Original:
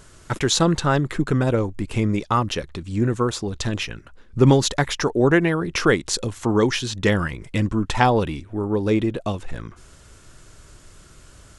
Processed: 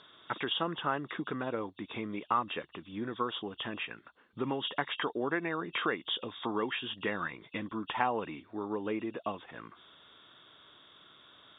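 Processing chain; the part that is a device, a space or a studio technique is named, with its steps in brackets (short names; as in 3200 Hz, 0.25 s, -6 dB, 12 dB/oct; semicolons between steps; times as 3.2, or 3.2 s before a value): hearing aid with frequency lowering (nonlinear frequency compression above 2600 Hz 4:1; compressor 2.5:1, threshold -21 dBFS, peak gain reduction 8 dB; speaker cabinet 310–6000 Hz, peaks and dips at 380 Hz -4 dB, 540 Hz -4 dB, 1100 Hz +4 dB, 2900 Hz -8 dB, 4700 Hz +7 dB); gain -6 dB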